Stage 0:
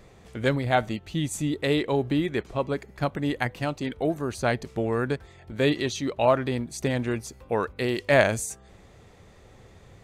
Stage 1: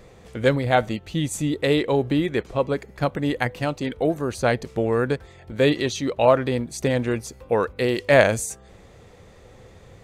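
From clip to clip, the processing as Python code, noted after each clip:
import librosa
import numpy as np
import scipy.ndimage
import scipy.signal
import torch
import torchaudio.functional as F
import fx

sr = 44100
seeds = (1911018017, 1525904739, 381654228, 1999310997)

y = fx.peak_eq(x, sr, hz=500.0, db=6.5, octaves=0.21)
y = F.gain(torch.from_numpy(y), 3.0).numpy()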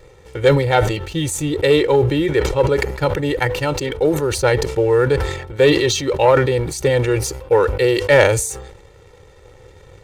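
y = x + 0.9 * np.pad(x, (int(2.2 * sr / 1000.0), 0))[:len(x)]
y = fx.leveller(y, sr, passes=1)
y = fx.sustainer(y, sr, db_per_s=62.0)
y = F.gain(torch.from_numpy(y), -1.0).numpy()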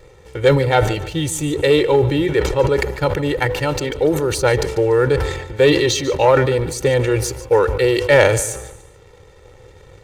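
y = fx.echo_feedback(x, sr, ms=145, feedback_pct=35, wet_db=-15.5)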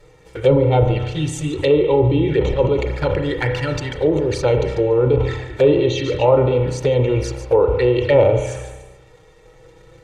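y = fx.env_flanger(x, sr, rest_ms=7.3, full_db=-13.5)
y = fx.rev_spring(y, sr, rt60_s=1.1, pass_ms=(32,), chirp_ms=60, drr_db=5.5)
y = fx.env_lowpass_down(y, sr, base_hz=1500.0, full_db=-9.5)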